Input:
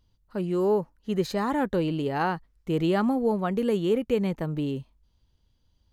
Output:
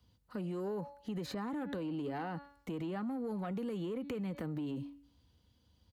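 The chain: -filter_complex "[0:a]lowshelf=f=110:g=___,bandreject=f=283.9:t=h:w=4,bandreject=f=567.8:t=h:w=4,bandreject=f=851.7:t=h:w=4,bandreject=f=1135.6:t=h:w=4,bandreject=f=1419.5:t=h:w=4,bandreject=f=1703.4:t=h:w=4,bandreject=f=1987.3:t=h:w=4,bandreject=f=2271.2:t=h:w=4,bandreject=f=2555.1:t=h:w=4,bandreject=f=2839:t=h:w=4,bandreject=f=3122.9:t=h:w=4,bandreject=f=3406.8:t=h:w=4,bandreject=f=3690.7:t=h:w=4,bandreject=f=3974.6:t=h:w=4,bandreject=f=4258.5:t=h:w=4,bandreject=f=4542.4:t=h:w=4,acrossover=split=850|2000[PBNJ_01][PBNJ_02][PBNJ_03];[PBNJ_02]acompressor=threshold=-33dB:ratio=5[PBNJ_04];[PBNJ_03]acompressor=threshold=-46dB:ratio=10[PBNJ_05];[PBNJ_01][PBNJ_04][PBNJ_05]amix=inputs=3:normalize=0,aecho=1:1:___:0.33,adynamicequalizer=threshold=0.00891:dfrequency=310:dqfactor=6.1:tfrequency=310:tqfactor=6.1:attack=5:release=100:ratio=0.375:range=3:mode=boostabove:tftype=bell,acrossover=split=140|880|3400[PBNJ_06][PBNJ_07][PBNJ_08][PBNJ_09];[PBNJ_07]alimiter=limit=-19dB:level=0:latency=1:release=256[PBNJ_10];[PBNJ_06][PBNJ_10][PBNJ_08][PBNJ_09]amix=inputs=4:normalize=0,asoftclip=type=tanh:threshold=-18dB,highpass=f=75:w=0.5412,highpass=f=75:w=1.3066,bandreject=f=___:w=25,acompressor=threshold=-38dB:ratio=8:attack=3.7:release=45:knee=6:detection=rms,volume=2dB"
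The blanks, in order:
4.5, 4, 6200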